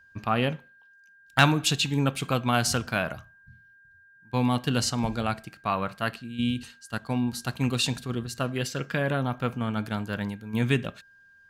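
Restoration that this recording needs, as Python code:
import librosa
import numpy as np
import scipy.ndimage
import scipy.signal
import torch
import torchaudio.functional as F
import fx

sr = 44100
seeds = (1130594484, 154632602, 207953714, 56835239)

y = fx.fix_declip(x, sr, threshold_db=-6.5)
y = fx.notch(y, sr, hz=1600.0, q=30.0)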